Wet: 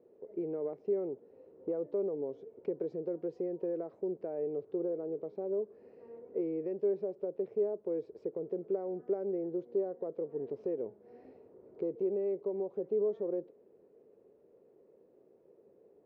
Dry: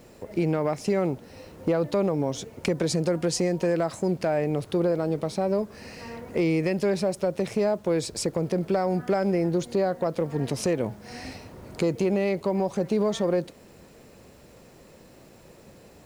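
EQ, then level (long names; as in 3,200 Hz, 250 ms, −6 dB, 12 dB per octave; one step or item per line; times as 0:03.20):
resonant band-pass 420 Hz, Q 4.9
high-frequency loss of the air 170 metres
−3.0 dB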